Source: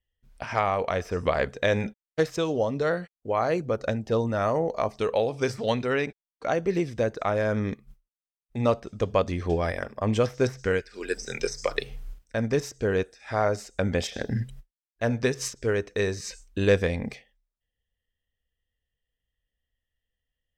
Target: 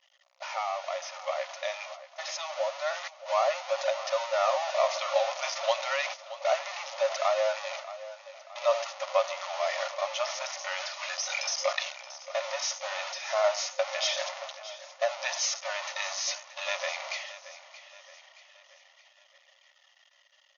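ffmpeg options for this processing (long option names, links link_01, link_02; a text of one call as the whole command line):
ffmpeg -i in.wav -af "aeval=exprs='val(0)+0.5*0.075*sgn(val(0))':channel_layout=same,bandreject=frequency=1600:width=5.1,agate=range=-26dB:threshold=-28dB:ratio=16:detection=peak,dynaudnorm=framelen=510:gausssize=11:maxgain=11.5dB,afftfilt=real='re*between(b*sr/4096,530,6800)':imag='im*between(b*sr/4096,530,6800)':win_size=4096:overlap=0.75,flanger=delay=1.1:depth=3.6:regen=-57:speed=0.26:shape=triangular,aecho=1:1:625|1250|1875|2500:0.178|0.0854|0.041|0.0197,volume=-5.5dB" out.wav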